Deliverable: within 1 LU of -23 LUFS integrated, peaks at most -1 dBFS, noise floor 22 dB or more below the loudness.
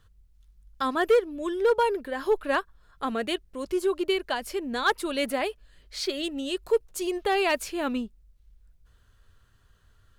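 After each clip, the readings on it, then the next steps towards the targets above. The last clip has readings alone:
clipped samples 0.4%; clipping level -15.0 dBFS; loudness -27.5 LUFS; peak level -15.0 dBFS; loudness target -23.0 LUFS
-> clip repair -15 dBFS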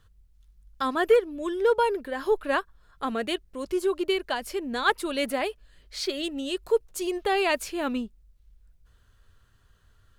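clipped samples 0.0%; loudness -27.5 LUFS; peak level -10.0 dBFS; loudness target -23.0 LUFS
-> trim +4.5 dB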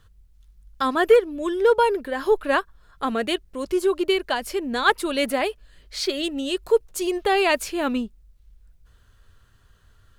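loudness -23.0 LUFS; peak level -5.5 dBFS; noise floor -57 dBFS

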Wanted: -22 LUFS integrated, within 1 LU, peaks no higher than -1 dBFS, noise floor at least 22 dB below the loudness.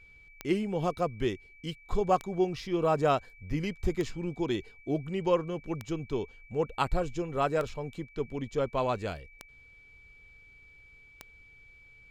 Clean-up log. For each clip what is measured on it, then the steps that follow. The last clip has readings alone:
clicks found 7; steady tone 2.3 kHz; tone level -54 dBFS; loudness -32.0 LUFS; peak level -13.5 dBFS; loudness target -22.0 LUFS
-> de-click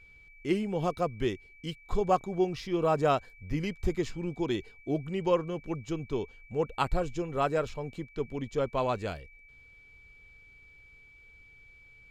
clicks found 0; steady tone 2.3 kHz; tone level -54 dBFS
-> band-stop 2.3 kHz, Q 30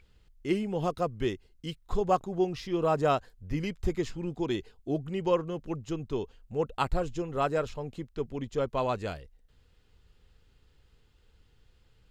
steady tone not found; loudness -32.0 LUFS; peak level -13.5 dBFS; loudness target -22.0 LUFS
-> trim +10 dB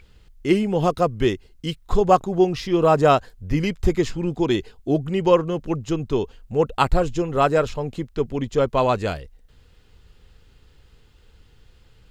loudness -22.0 LUFS; peak level -3.5 dBFS; noise floor -55 dBFS

